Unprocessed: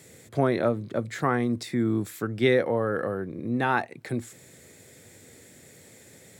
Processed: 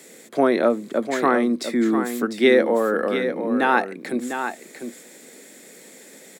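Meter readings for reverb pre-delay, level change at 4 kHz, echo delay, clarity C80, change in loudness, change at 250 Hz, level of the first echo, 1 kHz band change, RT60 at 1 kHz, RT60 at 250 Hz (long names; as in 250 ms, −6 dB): no reverb audible, +6.5 dB, 700 ms, no reverb audible, +6.0 dB, +6.0 dB, −8.0 dB, +6.5 dB, no reverb audible, no reverb audible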